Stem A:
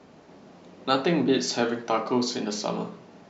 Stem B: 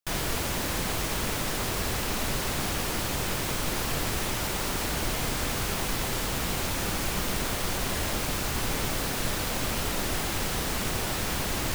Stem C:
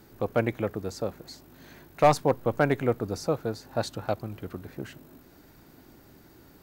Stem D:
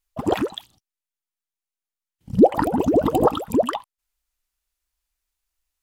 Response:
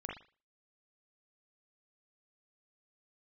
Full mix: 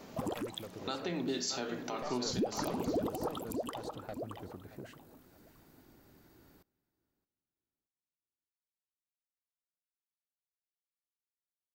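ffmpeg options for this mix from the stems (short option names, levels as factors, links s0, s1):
-filter_complex "[0:a]volume=1,asplit=2[s0][s1];[s1]volume=0.0944[s2];[2:a]volume=0.398,asplit=2[s3][s4];[s4]volume=0.0631[s5];[3:a]volume=0.708,asplit=2[s6][s7];[s7]volume=0.0944[s8];[s3]aeval=exprs='clip(val(0),-1,0.0335)':c=same,acompressor=threshold=0.00708:ratio=2.5,volume=1[s9];[s0][s6]amix=inputs=2:normalize=0,highshelf=f=5100:g=11,acompressor=threshold=0.0126:ratio=2,volume=1[s10];[s2][s5][s8]amix=inputs=3:normalize=0,aecho=0:1:623|1246|1869|2492:1|0.25|0.0625|0.0156[s11];[s9][s10][s11]amix=inputs=3:normalize=0,alimiter=level_in=1.06:limit=0.0631:level=0:latency=1:release=338,volume=0.944"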